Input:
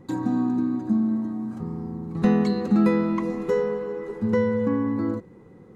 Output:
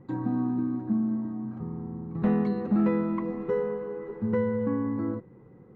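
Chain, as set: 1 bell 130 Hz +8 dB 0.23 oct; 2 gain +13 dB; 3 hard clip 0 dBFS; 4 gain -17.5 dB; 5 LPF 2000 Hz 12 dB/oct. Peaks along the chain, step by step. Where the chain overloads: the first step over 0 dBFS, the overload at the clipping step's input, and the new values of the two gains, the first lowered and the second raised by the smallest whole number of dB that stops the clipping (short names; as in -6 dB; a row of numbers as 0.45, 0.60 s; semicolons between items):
-9.5, +3.5, 0.0, -17.5, -17.5 dBFS; step 2, 3.5 dB; step 2 +9 dB, step 4 -13.5 dB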